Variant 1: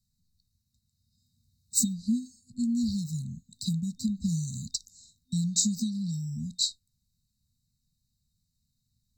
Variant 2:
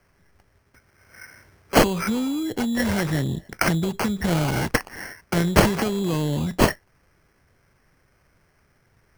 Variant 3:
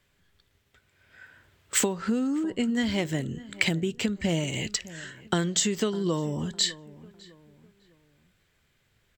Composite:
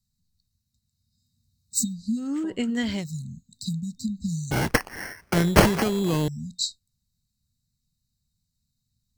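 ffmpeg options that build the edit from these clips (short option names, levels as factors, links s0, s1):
-filter_complex "[0:a]asplit=3[s0][s1][s2];[s0]atrim=end=2.32[s3];[2:a]atrim=start=2.16:end=3.06[s4];[s1]atrim=start=2.9:end=4.512[s5];[1:a]atrim=start=4.508:end=6.282[s6];[s2]atrim=start=6.278[s7];[s3][s4]acrossfade=d=0.16:c1=tri:c2=tri[s8];[s8][s5]acrossfade=d=0.16:c1=tri:c2=tri[s9];[s9][s6]acrossfade=d=0.004:c1=hsin:c2=hsin[s10];[s10][s7]acrossfade=d=0.004:c1=hsin:c2=hsin"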